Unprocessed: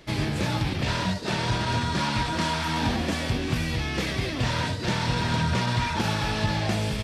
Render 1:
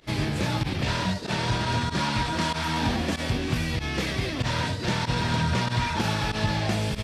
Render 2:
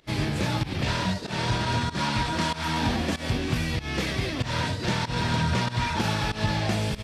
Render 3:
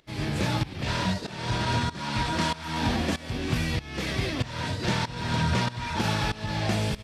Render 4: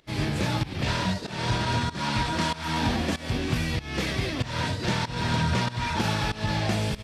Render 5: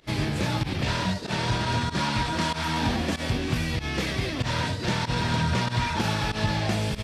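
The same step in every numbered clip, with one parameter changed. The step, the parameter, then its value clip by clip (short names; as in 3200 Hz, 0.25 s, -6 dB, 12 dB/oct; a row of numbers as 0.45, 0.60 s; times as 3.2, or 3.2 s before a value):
pump, release: 60, 158, 501, 280, 89 ms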